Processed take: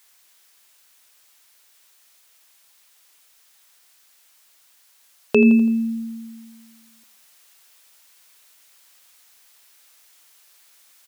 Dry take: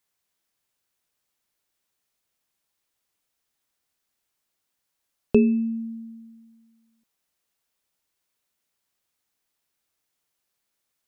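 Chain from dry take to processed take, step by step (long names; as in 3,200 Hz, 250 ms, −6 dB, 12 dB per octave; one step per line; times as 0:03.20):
high-pass filter 1,300 Hz 6 dB per octave
in parallel at +1 dB: speech leveller
on the sum: repeating echo 83 ms, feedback 54%, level −21 dB
boost into a limiter +22 dB
level −5 dB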